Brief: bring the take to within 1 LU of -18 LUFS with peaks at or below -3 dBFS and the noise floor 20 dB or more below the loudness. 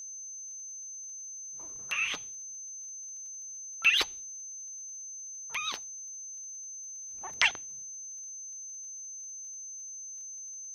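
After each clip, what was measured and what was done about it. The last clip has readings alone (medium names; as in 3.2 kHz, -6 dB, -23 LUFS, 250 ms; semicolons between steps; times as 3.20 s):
tick rate 28 per s; steady tone 6.2 kHz; tone level -40 dBFS; loudness -34.0 LUFS; peak level -4.5 dBFS; loudness target -18.0 LUFS
-> de-click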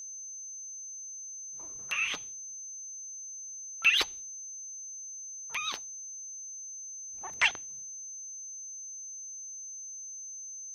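tick rate 0 per s; steady tone 6.2 kHz; tone level -40 dBFS
-> band-stop 6.2 kHz, Q 30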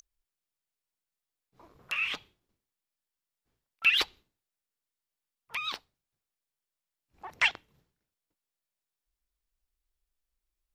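steady tone not found; loudness -29.0 LUFS; peak level -12.5 dBFS; loudness target -18.0 LUFS
-> trim +11 dB; peak limiter -3 dBFS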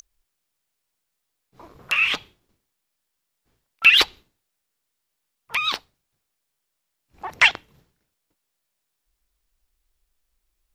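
loudness -18.5 LUFS; peak level -3.0 dBFS; noise floor -79 dBFS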